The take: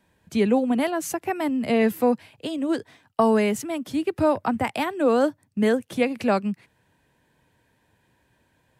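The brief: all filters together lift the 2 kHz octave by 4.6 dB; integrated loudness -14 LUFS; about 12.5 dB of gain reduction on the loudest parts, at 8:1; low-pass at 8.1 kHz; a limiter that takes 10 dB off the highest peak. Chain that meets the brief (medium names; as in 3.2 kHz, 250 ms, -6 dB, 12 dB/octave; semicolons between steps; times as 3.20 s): low-pass 8.1 kHz; peaking EQ 2 kHz +5.5 dB; compression 8:1, threshold -28 dBFS; trim +20 dB; peak limiter -4 dBFS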